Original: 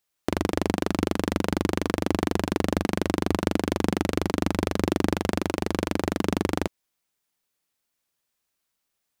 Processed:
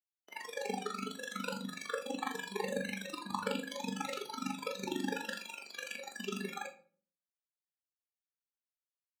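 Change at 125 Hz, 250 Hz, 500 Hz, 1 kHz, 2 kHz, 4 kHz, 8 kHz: -20.5, -16.5, -13.5, -10.0, -7.5, -8.0, -8.5 dB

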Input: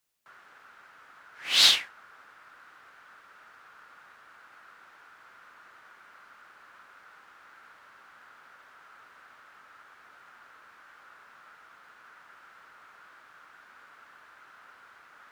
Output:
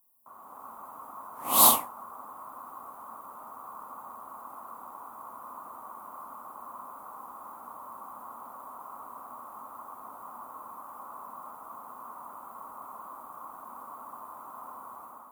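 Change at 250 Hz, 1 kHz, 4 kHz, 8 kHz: +14.0, +13.5, -12.0, +7.0 dB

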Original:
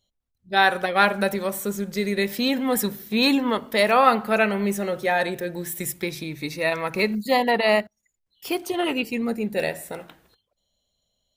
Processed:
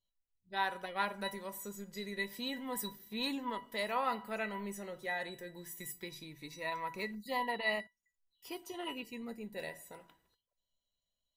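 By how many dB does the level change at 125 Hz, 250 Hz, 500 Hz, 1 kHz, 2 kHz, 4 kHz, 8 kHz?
-18.5, -18.5, -18.5, -15.0, -15.0, -14.5, -14.5 dB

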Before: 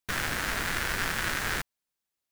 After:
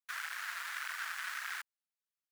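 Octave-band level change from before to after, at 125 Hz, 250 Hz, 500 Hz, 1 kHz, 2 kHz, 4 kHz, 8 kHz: under -40 dB, under -40 dB, under -25 dB, -10.0 dB, -9.0 dB, -11.5 dB, -12.0 dB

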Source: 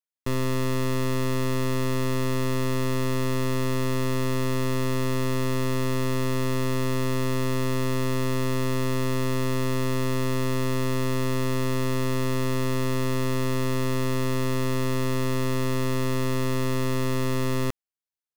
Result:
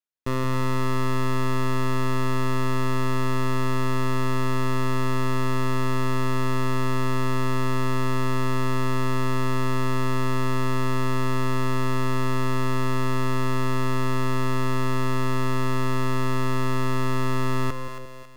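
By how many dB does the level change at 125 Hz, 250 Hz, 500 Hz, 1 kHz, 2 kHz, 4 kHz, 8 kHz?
+1.0, -0.5, -1.5, +5.5, +2.5, -1.5, -3.5 dB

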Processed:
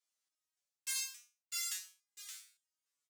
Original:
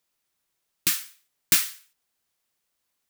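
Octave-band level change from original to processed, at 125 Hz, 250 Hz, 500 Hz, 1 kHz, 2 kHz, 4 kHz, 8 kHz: under -40 dB, under -40 dB, under -25 dB, -15.5 dB, -13.5 dB, -12.0 dB, -11.0 dB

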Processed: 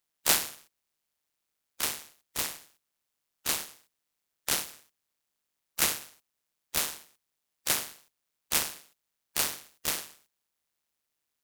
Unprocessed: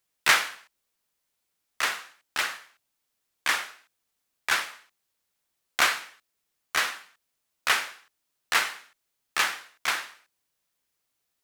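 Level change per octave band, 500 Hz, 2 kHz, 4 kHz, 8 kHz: -1.5, -12.0, -4.0, +3.5 dB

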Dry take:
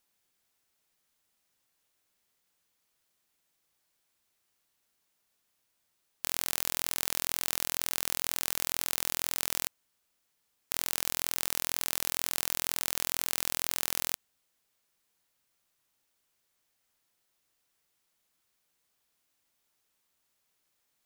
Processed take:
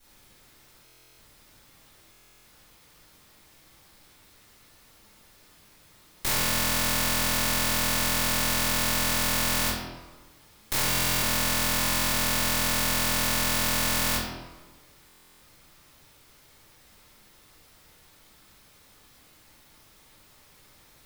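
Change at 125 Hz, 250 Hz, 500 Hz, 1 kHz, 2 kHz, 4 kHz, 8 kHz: +18.0, +16.5, +11.5, +12.0, +11.5, +8.5, +6.0 dB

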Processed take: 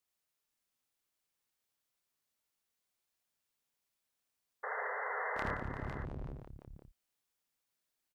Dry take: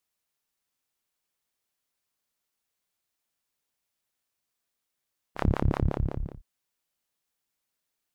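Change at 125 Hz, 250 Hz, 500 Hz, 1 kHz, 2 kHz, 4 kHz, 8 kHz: -15.0 dB, -14.0 dB, -6.0 dB, -0.5 dB, +7.0 dB, -7.5 dB, n/a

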